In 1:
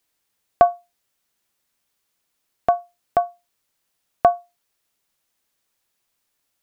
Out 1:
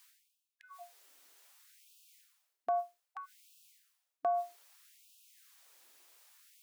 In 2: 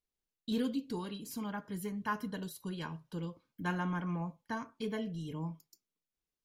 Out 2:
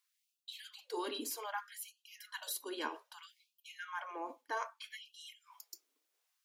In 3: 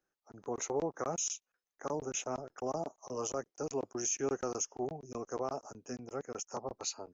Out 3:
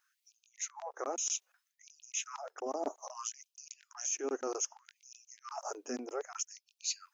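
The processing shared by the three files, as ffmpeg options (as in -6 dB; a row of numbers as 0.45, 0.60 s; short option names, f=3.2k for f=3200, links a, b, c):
-af "areverse,acompressor=threshold=-44dB:ratio=8,areverse,afftfilt=real='re*gte(b*sr/1024,230*pow(2500/230,0.5+0.5*sin(2*PI*0.63*pts/sr)))':imag='im*gte(b*sr/1024,230*pow(2500/230,0.5+0.5*sin(2*PI*0.63*pts/sr)))':win_size=1024:overlap=0.75,volume=11.5dB"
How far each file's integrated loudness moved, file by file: -16.0, -4.5, -0.5 LU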